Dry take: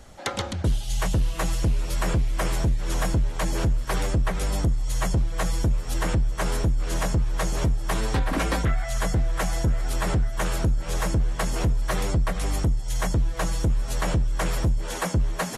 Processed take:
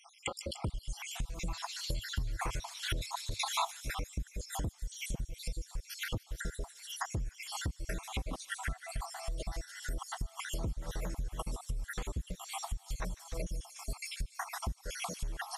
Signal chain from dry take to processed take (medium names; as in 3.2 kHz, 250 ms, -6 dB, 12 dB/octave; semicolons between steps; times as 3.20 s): random holes in the spectrogram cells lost 70%; feedback echo behind a high-pass 148 ms, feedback 72%, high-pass 3.8 kHz, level -8 dB; compression 10:1, threshold -36 dBFS, peak gain reduction 16.5 dB; 1.47–3.65 s: fifteen-band graphic EQ 100 Hz +8 dB, 1 kHz +10 dB, 4 kHz +12 dB; trim +2 dB